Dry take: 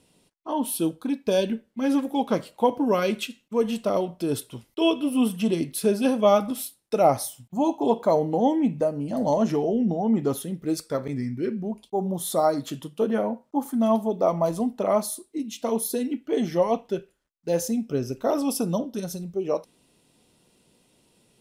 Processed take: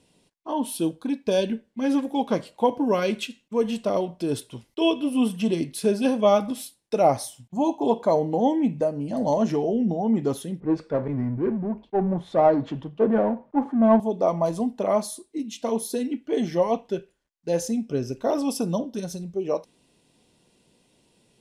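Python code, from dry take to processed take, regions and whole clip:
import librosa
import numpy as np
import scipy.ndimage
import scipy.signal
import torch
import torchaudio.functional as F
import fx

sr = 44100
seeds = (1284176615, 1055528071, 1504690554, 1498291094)

y = fx.chain(x, sr, fx.power_curve(exponent=0.7),
    fx.lowpass(hz=1500.0, slope=12),
    fx.band_widen(depth_pct=70), at=(10.6, 14.0))
y = scipy.signal.sosfilt(scipy.signal.butter(2, 9400.0, 'lowpass', fs=sr, output='sos'), y)
y = fx.notch(y, sr, hz=1300.0, q=9.4)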